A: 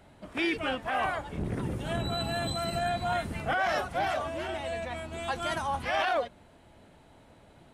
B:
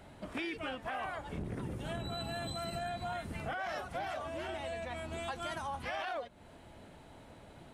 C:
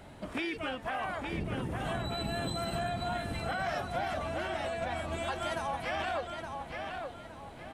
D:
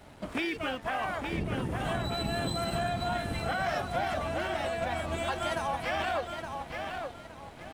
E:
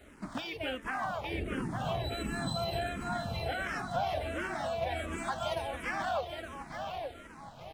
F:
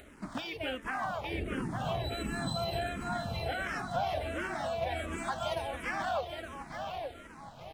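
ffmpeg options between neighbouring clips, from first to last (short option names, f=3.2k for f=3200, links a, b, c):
-af "acompressor=threshold=-40dB:ratio=4,volume=2dB"
-filter_complex "[0:a]asplit=2[a][b];[b]adelay=868,lowpass=f=4.9k:p=1,volume=-5dB,asplit=2[c][d];[d]adelay=868,lowpass=f=4.9k:p=1,volume=0.37,asplit=2[e][f];[f]adelay=868,lowpass=f=4.9k:p=1,volume=0.37,asplit=2[g][h];[h]adelay=868,lowpass=f=4.9k:p=1,volume=0.37,asplit=2[i][j];[j]adelay=868,lowpass=f=4.9k:p=1,volume=0.37[k];[a][c][e][g][i][k]amix=inputs=6:normalize=0,volume=3.5dB"
-af "aeval=exprs='sgn(val(0))*max(abs(val(0))-0.00188,0)':c=same,volume=3.5dB"
-filter_complex "[0:a]asplit=2[a][b];[b]afreqshift=-1.4[c];[a][c]amix=inputs=2:normalize=1"
-af "acompressor=mode=upward:threshold=-51dB:ratio=2.5"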